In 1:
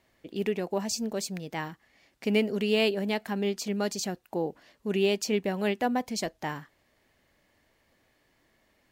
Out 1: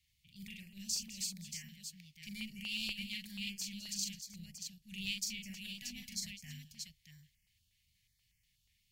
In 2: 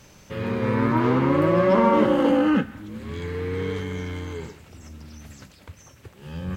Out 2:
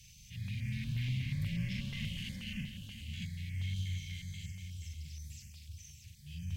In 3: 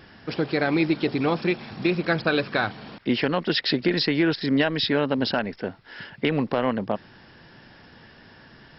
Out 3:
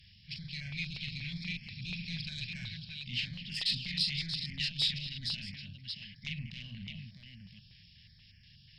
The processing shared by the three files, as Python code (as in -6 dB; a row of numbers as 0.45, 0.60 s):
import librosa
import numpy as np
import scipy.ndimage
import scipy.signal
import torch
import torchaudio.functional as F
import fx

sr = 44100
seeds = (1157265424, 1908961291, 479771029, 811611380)

y = fx.echo_multitap(x, sr, ms=(41, 208, 315, 631), db=(-4.5, -15.0, -17.5, -6.5))
y = fx.transient(y, sr, attack_db=-4, sustain_db=0)
y = fx.tube_stage(y, sr, drive_db=10.0, bias=0.4)
y = scipy.signal.sosfilt(scipy.signal.cheby2(4, 40, [290.0, 1400.0], 'bandstop', fs=sr, output='sos'), y)
y = fx.peak_eq(y, sr, hz=160.0, db=-5.5, octaves=1.0)
y = fx.filter_held_notch(y, sr, hz=8.3, low_hz=420.0, high_hz=3800.0)
y = y * librosa.db_to_amplitude(-2.5)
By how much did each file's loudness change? -11.5, -18.5, -11.5 LU